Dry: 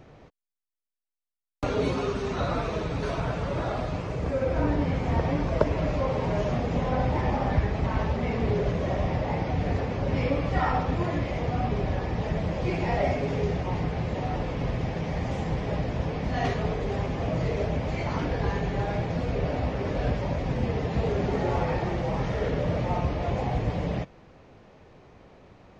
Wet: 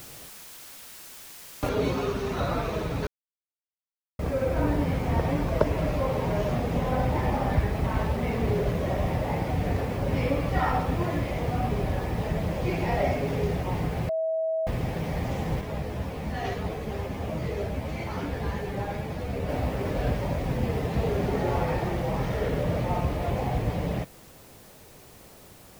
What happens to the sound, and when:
1.69 s: noise floor step -45 dB -54 dB
3.07–4.19 s: mute
14.09–14.67 s: bleep 645 Hz -24 dBFS
15.61–19.49 s: three-phase chorus

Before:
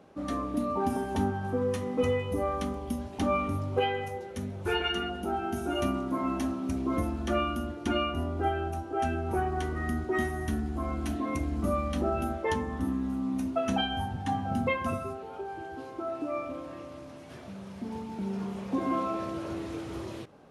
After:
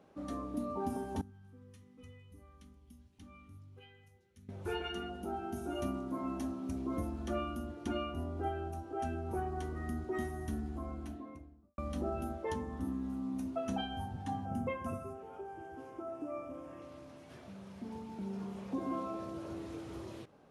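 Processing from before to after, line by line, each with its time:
1.21–4.49 s: amplifier tone stack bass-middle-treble 6-0-2
10.54–11.78 s: studio fade out
14.45–16.82 s: peaking EQ 4.1 kHz -13.5 dB 0.44 oct
whole clip: dynamic bell 2.2 kHz, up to -6 dB, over -47 dBFS, Q 0.71; trim -7 dB

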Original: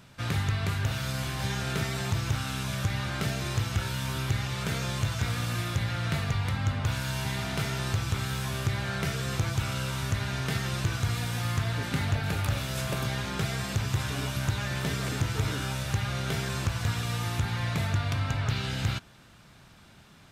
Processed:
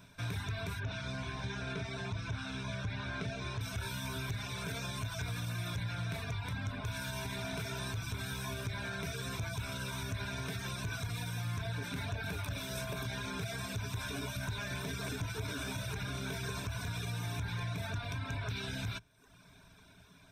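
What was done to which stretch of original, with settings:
0.80–3.61 s: distance through air 110 m
14.93–15.98 s: echo throw 550 ms, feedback 60%, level -6 dB
whole clip: reverb removal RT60 0.71 s; rippled EQ curve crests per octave 1.6, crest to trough 10 dB; peak limiter -24.5 dBFS; trim -5 dB

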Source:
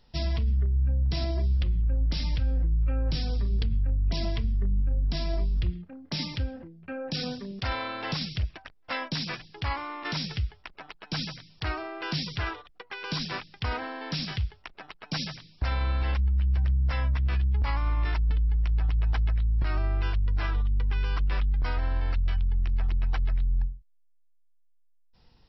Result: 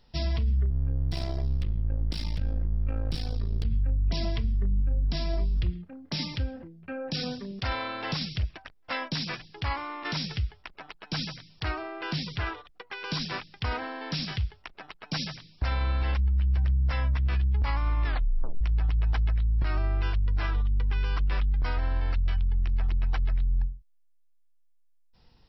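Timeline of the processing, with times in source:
0.70–3.65 s: partial rectifier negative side -12 dB
11.71–12.57 s: distance through air 74 m
18.06 s: tape stop 0.55 s

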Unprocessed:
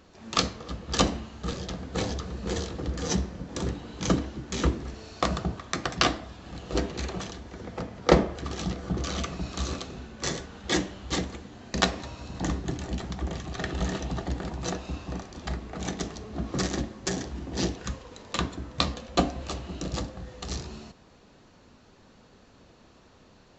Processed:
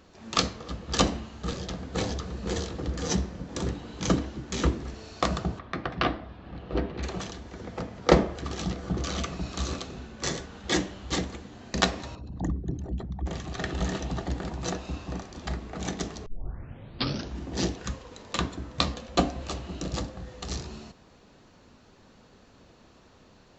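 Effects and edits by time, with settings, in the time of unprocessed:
5.59–7.03 s: distance through air 340 m
12.15–13.26 s: resonances exaggerated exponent 2
16.26 s: tape start 1.12 s

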